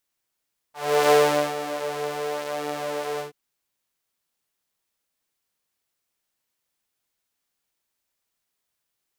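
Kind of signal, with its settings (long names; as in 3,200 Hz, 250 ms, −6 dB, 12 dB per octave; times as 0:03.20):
subtractive patch with pulse-width modulation D3, interval 0 semitones, detune 18 cents, oscillator 2 level −1 dB, noise −26.5 dB, filter highpass, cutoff 320 Hz, Q 2.9, filter envelope 1.5 octaves, filter decay 0.11 s, filter sustain 45%, attack 361 ms, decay 0.44 s, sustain −13 dB, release 0.13 s, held 2.45 s, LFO 0.9 Hz, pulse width 41%, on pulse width 13%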